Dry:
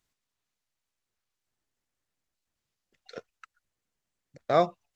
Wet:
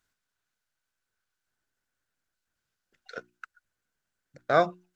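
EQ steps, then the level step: peaking EQ 1.5 kHz +13.5 dB 0.26 oct; hum notches 60/120/180/240/300/360 Hz; 0.0 dB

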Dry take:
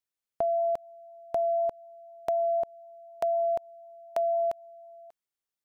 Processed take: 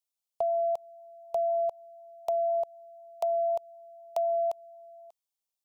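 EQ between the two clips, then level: bass shelf 430 Hz -11.5 dB; static phaser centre 680 Hz, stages 4; +2.5 dB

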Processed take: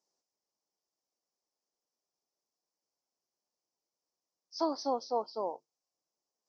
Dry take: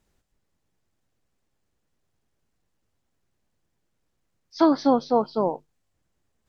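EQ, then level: high-pass 460 Hz 12 dB/octave; resonant low-pass 5.5 kHz, resonance Q 3; high-order bell 2.3 kHz -14 dB; -9.0 dB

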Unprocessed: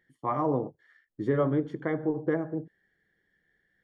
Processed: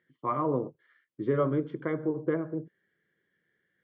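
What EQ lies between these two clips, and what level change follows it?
cabinet simulation 160–3000 Hz, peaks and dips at 200 Hz -5 dB, 290 Hz -5 dB, 460 Hz -3 dB, 670 Hz -5 dB, 1.8 kHz -9 dB; peaking EQ 810 Hz -11.5 dB 0.32 oct; +3.5 dB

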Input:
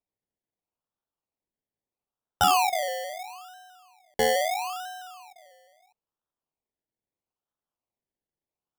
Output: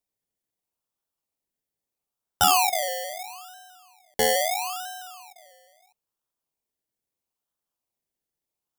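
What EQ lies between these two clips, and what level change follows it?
treble shelf 4.5 kHz +9 dB; 0.0 dB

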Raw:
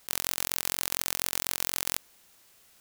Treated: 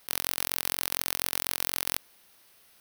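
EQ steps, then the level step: bass shelf 150 Hz -4.5 dB; peaking EQ 7.2 kHz -14 dB 0.21 oct; +1.0 dB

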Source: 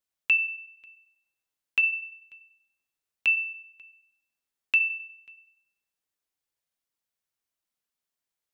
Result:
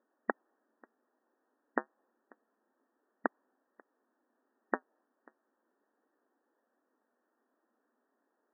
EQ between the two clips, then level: tilt EQ -4.5 dB/octave; dynamic bell 840 Hz, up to +4 dB, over -51 dBFS, Q 1.2; brick-wall FIR band-pass 220–1900 Hz; +17.0 dB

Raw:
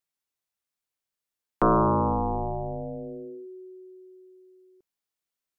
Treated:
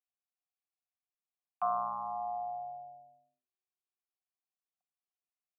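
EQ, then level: vowel filter a; elliptic band-stop 200–730 Hz, stop band 40 dB; bass shelf 140 Hz -6 dB; 0.0 dB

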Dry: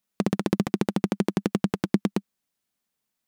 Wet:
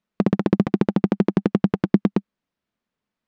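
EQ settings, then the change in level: tape spacing loss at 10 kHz 27 dB; band-stop 780 Hz, Q 12; +6.5 dB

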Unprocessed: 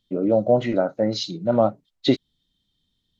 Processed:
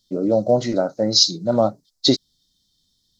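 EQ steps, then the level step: resonant high shelf 3.7 kHz +11 dB, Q 3; +1.0 dB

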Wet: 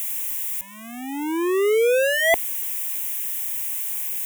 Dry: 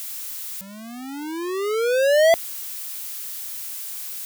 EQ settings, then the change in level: static phaser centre 910 Hz, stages 8; +6.0 dB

